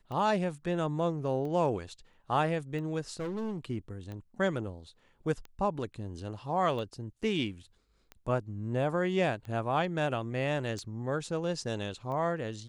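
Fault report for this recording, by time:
tick 45 rpm -30 dBFS
3.12–3.65 clipped -32 dBFS

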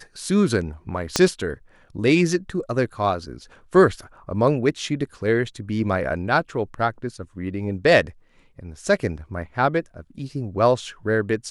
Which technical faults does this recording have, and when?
1.16 pop -3 dBFS

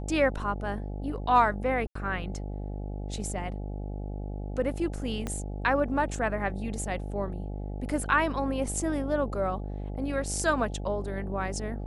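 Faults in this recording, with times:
buzz 50 Hz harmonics 17 -35 dBFS
1.87–1.95 gap 84 ms
5.27 pop -18 dBFS

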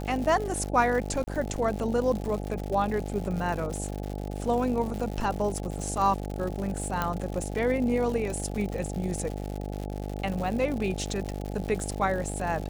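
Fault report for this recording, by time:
buzz 50 Hz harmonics 17 -34 dBFS
crackle 170/s -33 dBFS
1.24–1.27 gap 30 ms
7.02 pop -13 dBFS

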